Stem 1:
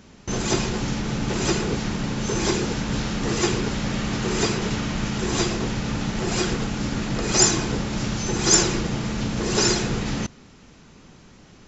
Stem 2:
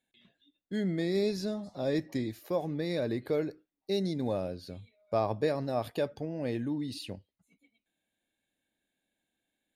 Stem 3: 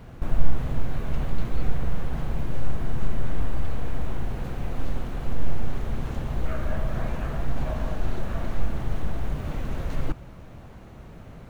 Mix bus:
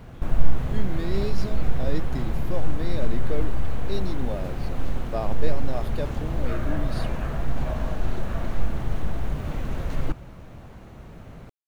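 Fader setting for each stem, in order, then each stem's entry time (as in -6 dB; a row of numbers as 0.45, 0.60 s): off, -1.5 dB, +1.0 dB; off, 0.00 s, 0.00 s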